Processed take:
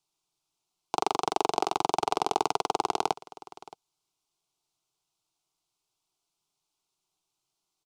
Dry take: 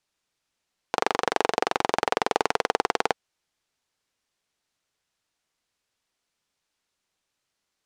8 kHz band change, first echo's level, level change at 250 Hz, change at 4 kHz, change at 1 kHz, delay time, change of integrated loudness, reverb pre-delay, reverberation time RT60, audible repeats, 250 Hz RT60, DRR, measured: -0.5 dB, -19.5 dB, -2.0 dB, -3.0 dB, -1.0 dB, 0.621 s, -2.5 dB, none, none, 1, none, none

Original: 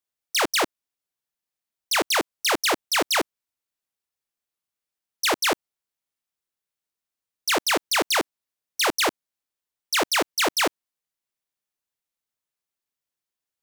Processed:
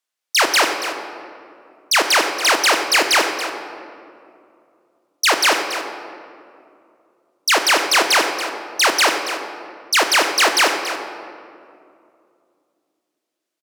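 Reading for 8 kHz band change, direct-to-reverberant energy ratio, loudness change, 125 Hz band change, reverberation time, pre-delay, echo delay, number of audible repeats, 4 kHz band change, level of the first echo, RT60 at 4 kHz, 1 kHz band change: +7.0 dB, 5.0 dB, +6.5 dB, n/a, 2.5 s, 22 ms, 0.281 s, 1, +7.5 dB, -12.0 dB, 1.3 s, +8.0 dB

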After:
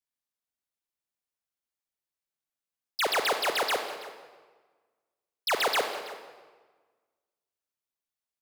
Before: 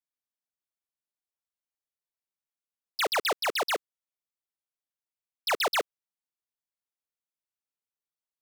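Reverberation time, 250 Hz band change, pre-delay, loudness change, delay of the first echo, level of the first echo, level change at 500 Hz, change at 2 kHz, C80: 1.4 s, +0.5 dB, 35 ms, 0.0 dB, 0.329 s, -17.5 dB, +1.0 dB, +1.0 dB, 8.0 dB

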